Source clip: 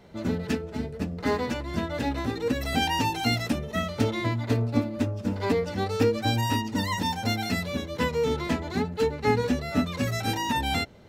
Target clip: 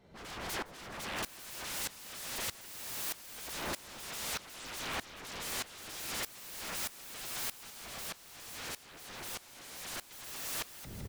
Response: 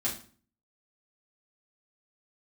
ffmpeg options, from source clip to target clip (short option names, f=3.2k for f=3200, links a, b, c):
-filter_complex "[0:a]asubboost=boost=5:cutoff=210,dynaudnorm=f=590:g=3:m=10.5dB,aeval=exprs='0.0119*(abs(mod(val(0)/0.0119+3,4)-2)-1)':c=same,asettb=1/sr,asplit=3[a][b][c];[a]atrim=end=7.704[d];[b]atrim=start=7.7:end=10.11,asetpts=PTS-STARTPTS,afade=t=in:d=0.004:c=qsin,afade=t=out:st=2.406:d=0.004:c=qsin,flanger=delay=8.4:depth=9.8:regen=77:speed=1.3:shape=sinusoidal[e];[c]atrim=start=10.106[f];[d][e]acrossfade=d=0.004:c1=hsin:c2=qsin[g];[g][f]acrossfade=d=0.004:c1=qsin:c2=hsin,aecho=1:1:162|324|486|648|810|972:0.355|0.185|0.0959|0.0499|0.0259|0.0135,aeval=exprs='val(0)*pow(10,-19*if(lt(mod(-1.6*n/s,1),2*abs(-1.6)/1000),1-mod(-1.6*n/s,1)/(2*abs(-1.6)/1000),(mod(-1.6*n/s,1)-2*abs(-1.6)/1000)/(1-2*abs(-1.6)/1000))/20)':c=same,volume=7.5dB"